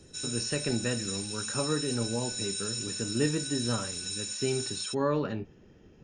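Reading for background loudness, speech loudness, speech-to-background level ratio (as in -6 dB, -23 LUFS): -33.5 LUFS, -33.0 LUFS, 0.5 dB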